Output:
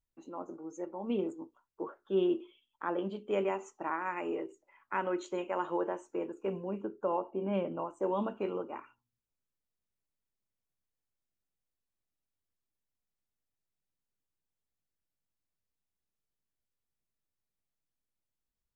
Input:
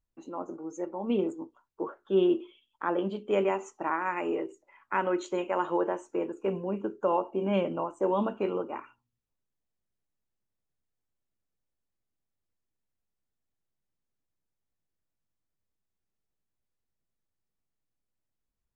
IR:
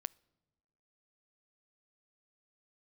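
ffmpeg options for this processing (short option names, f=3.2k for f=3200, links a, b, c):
-filter_complex "[0:a]asettb=1/sr,asplit=3[a][b][c];[a]atrim=end=6.844[d];[b]atrim=start=6.84:end=7.79,asetpts=PTS-STARTPTS,afade=t=in:d=0.004:c=qsin,afade=t=out:st=0.946:d=0.004:c=qsin,highshelf=f=3.1k:g=-10.5[e];[c]atrim=start=7.786[f];[d][e]acrossfade=d=0.004:c1=hsin:c2=qsin[g];[g][f]acrossfade=d=0.004:c1=qsin:c2=hsin,volume=-5dB"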